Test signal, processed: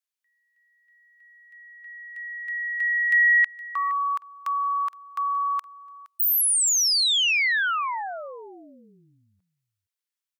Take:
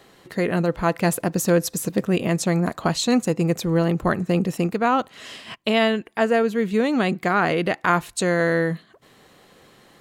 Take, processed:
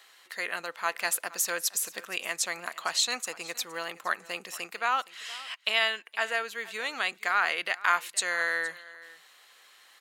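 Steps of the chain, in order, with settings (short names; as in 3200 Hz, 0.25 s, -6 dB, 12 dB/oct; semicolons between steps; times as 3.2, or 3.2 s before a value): HPF 1400 Hz 12 dB/oct; on a send: echo 0.467 s -19.5 dB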